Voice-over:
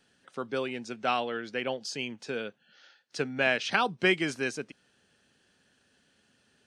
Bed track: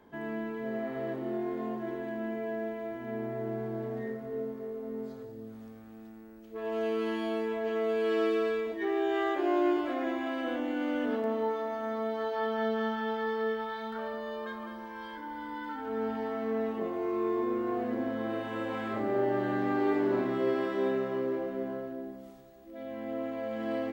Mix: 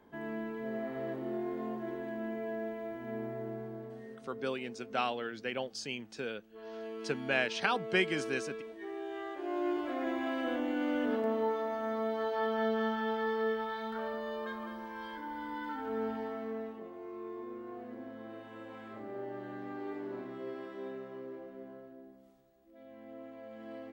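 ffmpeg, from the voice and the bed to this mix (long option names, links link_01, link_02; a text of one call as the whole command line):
ffmpeg -i stem1.wav -i stem2.wav -filter_complex "[0:a]adelay=3900,volume=-4.5dB[link_01];[1:a]volume=7.5dB,afade=type=out:start_time=3.17:duration=0.84:silence=0.375837,afade=type=in:start_time=9.36:duration=0.9:silence=0.298538,afade=type=out:start_time=15.8:duration=1.03:silence=0.251189[link_02];[link_01][link_02]amix=inputs=2:normalize=0" out.wav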